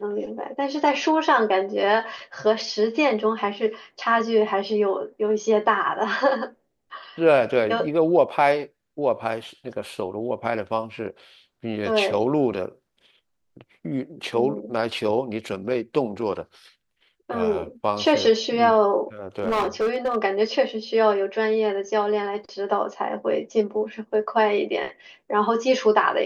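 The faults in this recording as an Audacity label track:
19.380000	20.170000	clipped -18.5 dBFS

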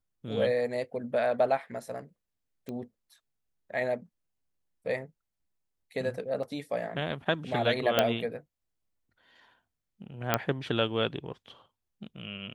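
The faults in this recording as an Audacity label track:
2.690000	2.690000	pop -26 dBFS
6.430000	6.430000	dropout 3.1 ms
7.990000	7.990000	pop -8 dBFS
10.340000	10.340000	pop -8 dBFS

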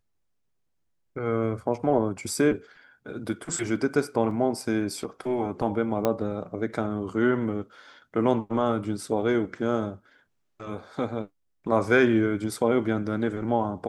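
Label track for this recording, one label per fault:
4.310000	4.310000	dropout 2.4 ms
6.050000	6.050000	pop -11 dBFS

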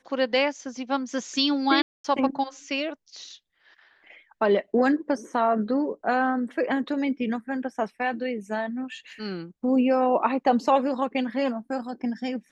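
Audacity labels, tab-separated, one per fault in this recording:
1.820000	2.040000	dropout 224 ms

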